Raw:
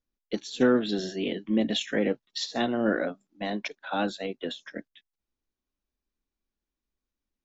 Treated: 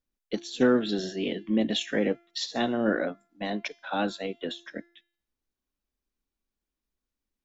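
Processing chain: de-hum 343.3 Hz, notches 40

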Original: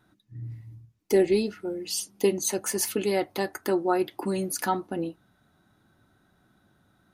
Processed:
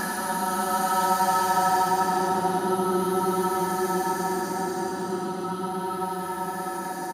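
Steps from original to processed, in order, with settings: reverse bouncing-ball echo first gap 70 ms, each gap 1.15×, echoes 5; Paulstretch 31×, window 0.10 s, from 4.66 s

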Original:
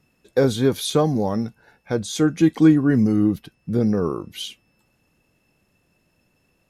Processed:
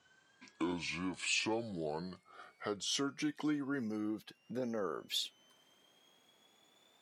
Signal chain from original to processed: gliding tape speed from 57% -> 134%; compression 2:1, threshold -38 dBFS, peak gain reduction 15.5 dB; frequency weighting A

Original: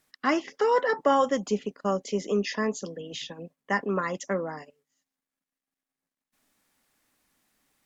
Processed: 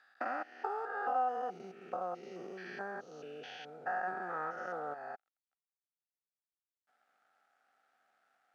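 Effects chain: spectrogram pixelated in time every 200 ms; compression 5:1, threshold -37 dBFS, peak gain reduction 13.5 dB; companded quantiser 6-bit; two resonant band-passes 1.1 kHz, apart 0.79 oct; speed mistake 48 kHz file played as 44.1 kHz; trim +12.5 dB

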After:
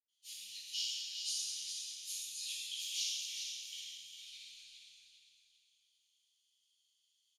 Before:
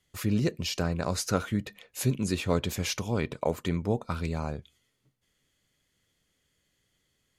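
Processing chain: octave divider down 2 oct, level -1 dB; elliptic high-pass 3 kHz, stop band 60 dB; band-stop 7.8 kHz, Q 8.9; feedback delay 405 ms, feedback 34%, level -6.5 dB; reverberation RT60 1.8 s, pre-delay 77 ms; trim +1 dB

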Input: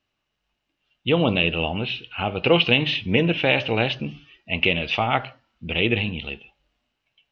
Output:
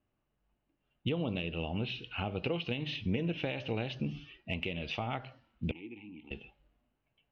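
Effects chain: compression 6:1, threshold -31 dBFS, peak gain reduction 18 dB; 5.71–6.31 s: vowel filter u; dynamic bell 3.1 kHz, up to -4 dB, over -49 dBFS, Q 1.1; level-controlled noise filter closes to 1.3 kHz, open at -34.5 dBFS; peaking EQ 1.2 kHz -6.5 dB 2.7 oct; trim +2.5 dB

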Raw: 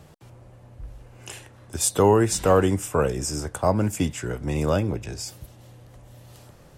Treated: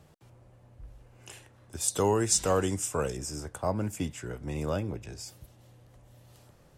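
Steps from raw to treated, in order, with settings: 1.88–3.17 s: peaking EQ 6.6 kHz +11.5 dB 1.6 oct; trim -8.5 dB

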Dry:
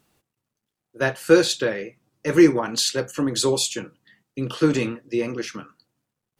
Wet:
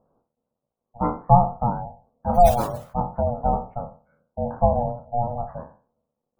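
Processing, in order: spectral sustain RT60 0.38 s; ring modulator 360 Hz; inverse Chebyshev low-pass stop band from 4.5 kHz, stop band 70 dB; 2.34–2.95 s: modulation noise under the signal 13 dB; bass shelf 80 Hz -5.5 dB; spectral gate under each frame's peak -30 dB strong; trim +4 dB

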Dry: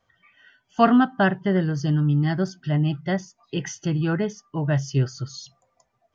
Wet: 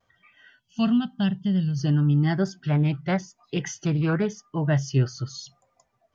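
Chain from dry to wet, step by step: 0.60–1.79 s: time-frequency box 250–2600 Hz -16 dB; vibrato 0.93 Hz 38 cents; 2.63–4.29 s: loudspeaker Doppler distortion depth 0.25 ms

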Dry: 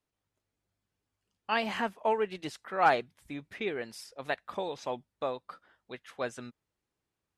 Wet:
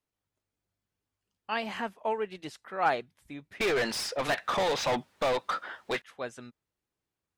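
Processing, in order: 3.60–6.02 s: overdrive pedal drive 34 dB, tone 3.3 kHz, clips at -17 dBFS; trim -2.5 dB

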